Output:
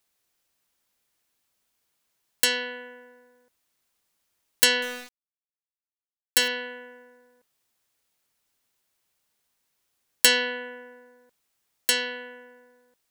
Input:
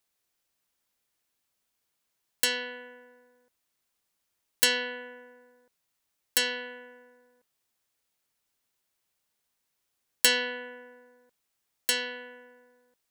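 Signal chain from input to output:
0:04.82–0:06.48: centre clipping without the shift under −37.5 dBFS
level +4 dB

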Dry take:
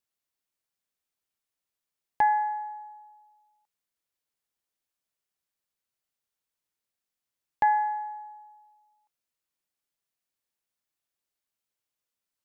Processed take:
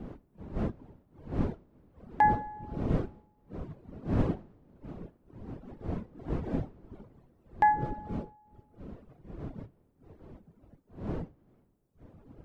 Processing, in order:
wind on the microphone 280 Hz −36 dBFS
reverb reduction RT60 1.6 s

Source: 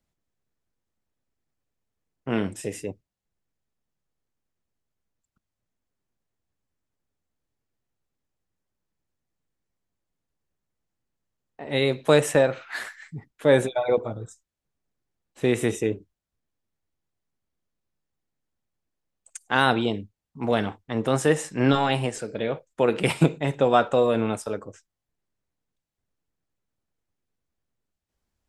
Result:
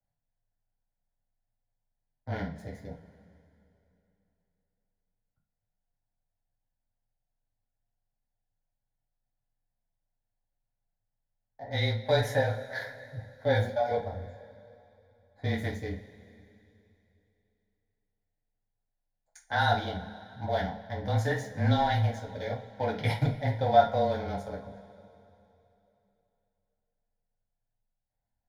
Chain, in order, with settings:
adaptive Wiener filter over 15 samples
soft clipping −7.5 dBFS, distortion −21 dB
frequency shifter −22 Hz
phaser with its sweep stopped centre 1,800 Hz, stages 8
coupled-rooms reverb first 0.28 s, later 3.1 s, from −22 dB, DRR −2.5 dB
level −5.5 dB

